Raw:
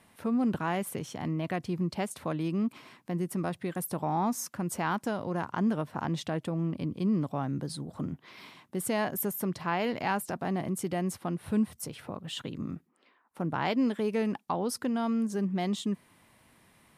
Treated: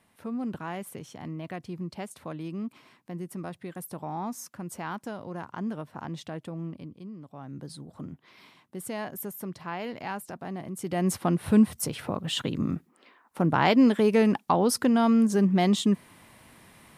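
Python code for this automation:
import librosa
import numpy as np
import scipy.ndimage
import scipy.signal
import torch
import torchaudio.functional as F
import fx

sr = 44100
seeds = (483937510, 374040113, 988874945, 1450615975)

y = fx.gain(x, sr, db=fx.line((6.68, -5.0), (7.16, -16.0), (7.65, -5.0), (10.72, -5.0), (11.12, 8.0)))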